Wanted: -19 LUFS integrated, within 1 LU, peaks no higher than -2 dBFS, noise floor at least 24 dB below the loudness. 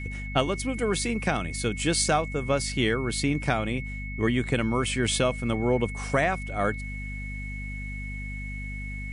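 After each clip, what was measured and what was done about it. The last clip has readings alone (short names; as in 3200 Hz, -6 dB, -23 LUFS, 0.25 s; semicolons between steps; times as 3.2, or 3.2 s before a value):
hum 50 Hz; harmonics up to 250 Hz; hum level -33 dBFS; steady tone 2200 Hz; tone level -38 dBFS; loudness -27.5 LUFS; peak -11.5 dBFS; loudness target -19.0 LUFS
-> notches 50/100/150/200/250 Hz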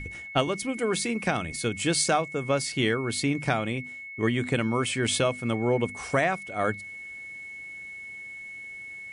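hum none; steady tone 2200 Hz; tone level -38 dBFS
-> notch 2200 Hz, Q 30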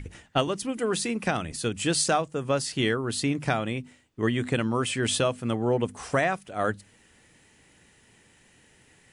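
steady tone none; loudness -27.0 LUFS; peak -12.0 dBFS; loudness target -19.0 LUFS
-> gain +8 dB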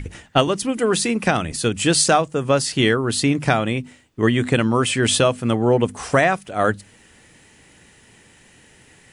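loudness -19.0 LUFS; peak -4.0 dBFS; noise floor -52 dBFS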